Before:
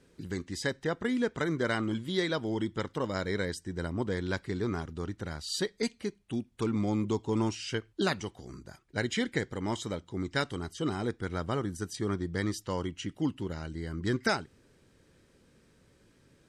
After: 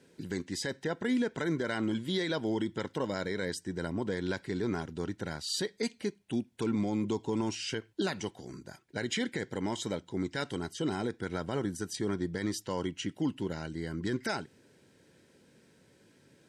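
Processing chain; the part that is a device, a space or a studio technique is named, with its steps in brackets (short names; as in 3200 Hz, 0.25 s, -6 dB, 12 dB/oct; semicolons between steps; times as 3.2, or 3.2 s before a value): PA system with an anti-feedback notch (HPF 130 Hz 12 dB/oct; Butterworth band-stop 1200 Hz, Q 6.4; limiter -24 dBFS, peak gain reduction 10 dB); gain +2 dB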